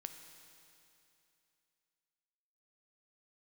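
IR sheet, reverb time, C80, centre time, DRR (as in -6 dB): 2.8 s, 8.0 dB, 41 ms, 6.5 dB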